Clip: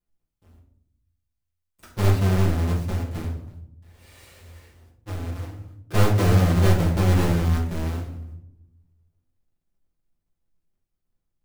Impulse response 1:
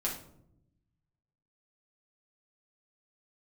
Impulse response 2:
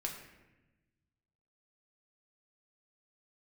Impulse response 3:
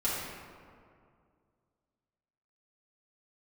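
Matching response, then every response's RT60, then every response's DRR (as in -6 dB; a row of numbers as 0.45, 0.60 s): 1; 0.75, 1.1, 2.2 s; -4.5, -0.5, -9.5 dB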